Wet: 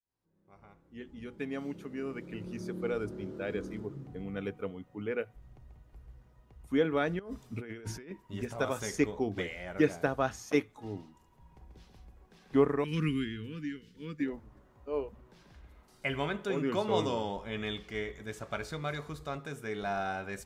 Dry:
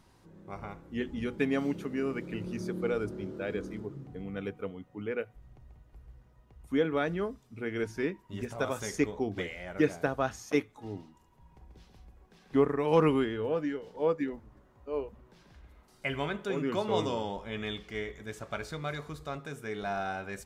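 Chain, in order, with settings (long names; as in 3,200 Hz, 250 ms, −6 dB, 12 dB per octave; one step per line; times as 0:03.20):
fade in at the beginning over 3.88 s
0:07.19–0:08.11: compressor whose output falls as the input rises −43 dBFS, ratio −1
0:12.84–0:14.20: Chebyshev band-stop filter 230–2,100 Hz, order 2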